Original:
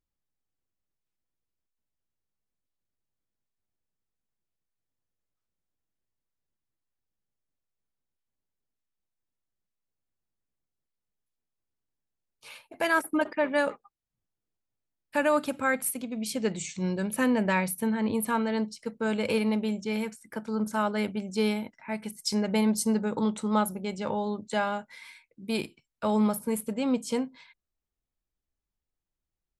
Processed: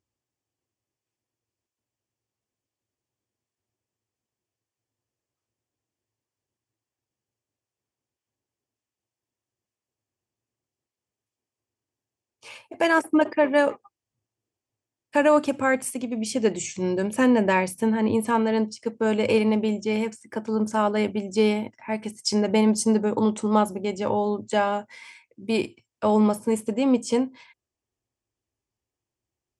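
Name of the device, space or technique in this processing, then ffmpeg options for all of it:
car door speaker: -af "highpass=95,equalizer=f=110:t=q:w=4:g=8,equalizer=f=170:t=q:w=4:g=-10,equalizer=f=360:t=q:w=4:g=4,equalizer=f=1.4k:t=q:w=4:g=-7,equalizer=f=2.1k:t=q:w=4:g=-3,equalizer=f=3.9k:t=q:w=4:g=-9,lowpass=f=8.4k:w=0.5412,lowpass=f=8.4k:w=1.3066,volume=6.5dB"

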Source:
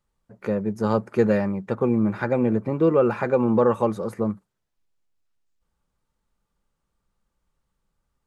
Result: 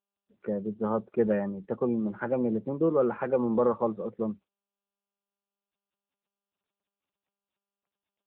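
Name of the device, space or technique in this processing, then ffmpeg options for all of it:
mobile call with aggressive noise cancelling: -filter_complex "[0:a]asettb=1/sr,asplit=3[a][b][c];[a]atrim=end=3.554[d];[b]atrim=start=3.55:end=4.26,asetpts=PTS-STARTPTS,afade=t=in:d=0.004:c=qsin,afade=t=out:st=0.706:d=0.004:c=qsin,agate=range=-46dB:threshold=-38dB:ratio=16:detection=peak[e];[c]atrim=start=4.256[f];[d][e]acrossfade=d=0.004:c1=hsin:c2=qsin[g];[g][f]acrossfade=d=0.004:c1=qsin:c2=hsin,highpass=160,afftdn=nr=18:nf=-33,volume=-5dB" -ar 8000 -c:a libopencore_amrnb -b:a 10200

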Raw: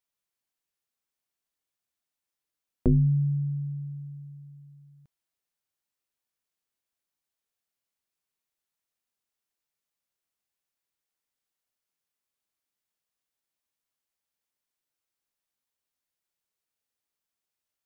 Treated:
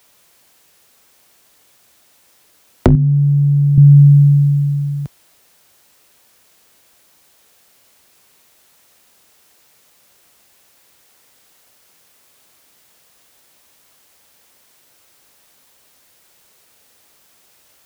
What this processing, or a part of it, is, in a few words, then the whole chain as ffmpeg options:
mastering chain: -filter_complex "[0:a]highpass=42,equalizer=f=550:t=o:w=1.1:g=3,acrossover=split=170|390[a][b][c];[a]acompressor=threshold=-35dB:ratio=4[d];[b]acompressor=threshold=-45dB:ratio=4[e];[c]acompressor=threshold=-53dB:ratio=4[f];[d][e][f]amix=inputs=3:normalize=0,acompressor=threshold=-37dB:ratio=2.5,asoftclip=type=hard:threshold=-32dB,alimiter=level_in=35dB:limit=-1dB:release=50:level=0:latency=1,asettb=1/sr,asplit=3[g][h][i];[g]atrim=end=2.954[j];[h]atrim=start=2.95:end=3.78,asetpts=PTS-STARTPTS,afade=t=in:d=0.004:c=qsin,afade=t=out:st=0.826:d=0.004:c=qsin,highpass=f=290:p=1[k];[i]atrim=start=3.776[l];[j][k]acrossfade=d=0.004:c1=hsin:c2=qsin[m];[m][l]acrossfade=d=0.004:c1=qsin:c2=hsin,volume=-1dB"

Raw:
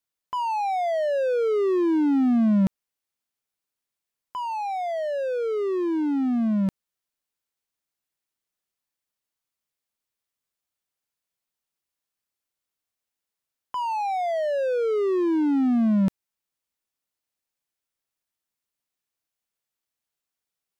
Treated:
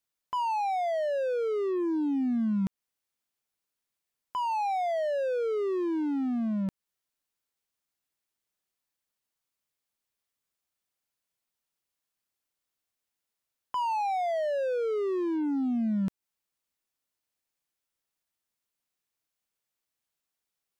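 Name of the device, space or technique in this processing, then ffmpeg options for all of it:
clipper into limiter: -af "asoftclip=type=hard:threshold=-17dB,alimiter=limit=-24dB:level=0:latency=1:release=187"

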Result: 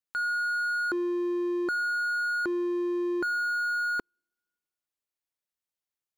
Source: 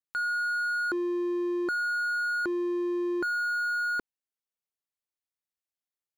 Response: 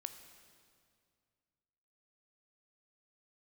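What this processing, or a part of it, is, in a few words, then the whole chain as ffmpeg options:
keyed gated reverb: -filter_complex "[0:a]asplit=3[a][b][c];[1:a]atrim=start_sample=2205[d];[b][d]afir=irnorm=-1:irlink=0[e];[c]apad=whole_len=272181[f];[e][f]sidechaingate=range=-44dB:threshold=-25dB:ratio=16:detection=peak,volume=6dB[g];[a][g]amix=inputs=2:normalize=0"

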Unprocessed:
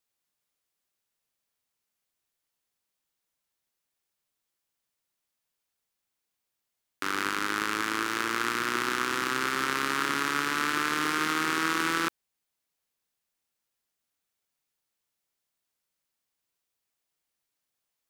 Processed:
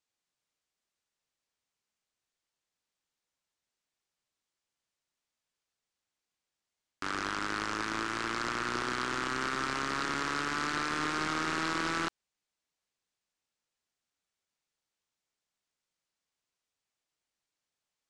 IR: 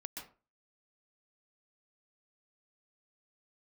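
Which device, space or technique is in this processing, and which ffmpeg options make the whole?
synthesiser wavefolder: -af "aeval=exprs='0.0891*(abs(mod(val(0)/0.0891+3,4)-2)-1)':c=same,lowpass=f=8.2k:w=0.5412,lowpass=f=8.2k:w=1.3066,volume=-2dB"

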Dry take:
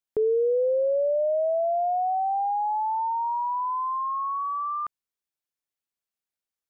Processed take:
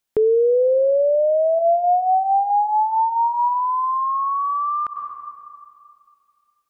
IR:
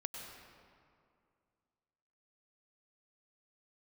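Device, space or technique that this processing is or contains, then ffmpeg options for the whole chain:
ducked reverb: -filter_complex "[0:a]asettb=1/sr,asplit=3[a][b][c];[a]atrim=end=1.564[d];[b]atrim=start=1.56:end=3.49,asetpts=PTS-STARTPTS,afade=t=in:d=0.004:c=qsin,afade=t=out:st=1.926:d=0.004:c=qsin,asplit=2[e][f];[f]adelay=28,volume=-6.5dB[g];[e][g]amix=inputs=2:normalize=0,atrim=end_sample=85113[h];[c]atrim=start=3.486[i];[d][h]acrossfade=d=0.004:c1=hsin:c2=qsin[j];[j][i]acrossfade=d=0.004:c1=qsin:c2=hsin,asplit=3[k][l][m];[1:a]atrim=start_sample=2205[n];[l][n]afir=irnorm=-1:irlink=0[o];[m]apad=whole_len=295351[p];[o][p]sidechaincompress=threshold=-44dB:ratio=8:attack=16:release=115,volume=0dB[q];[k][q]amix=inputs=2:normalize=0,volume=6dB"

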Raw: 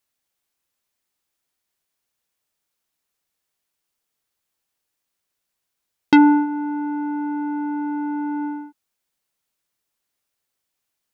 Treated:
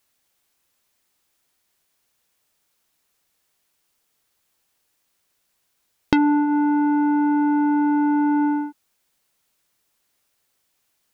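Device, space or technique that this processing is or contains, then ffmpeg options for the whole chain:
serial compression, leveller first: -af "acompressor=threshold=-19dB:ratio=2,acompressor=threshold=-26dB:ratio=4,volume=8.5dB"

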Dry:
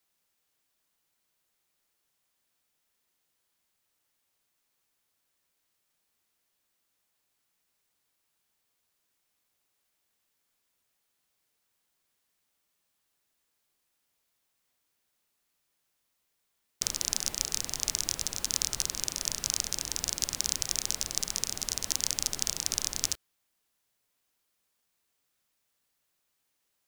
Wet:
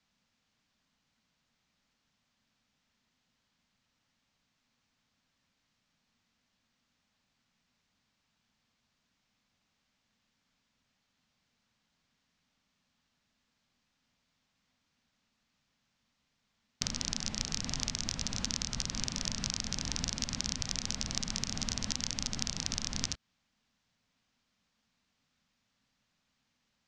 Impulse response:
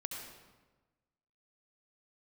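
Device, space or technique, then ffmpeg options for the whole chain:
jukebox: -af "lowpass=6.5k,lowpass=f=6.7k:w=0.5412,lowpass=f=6.7k:w=1.3066,lowshelf=f=290:t=q:w=3:g=6,acompressor=threshold=-33dB:ratio=5,volume=4dB"

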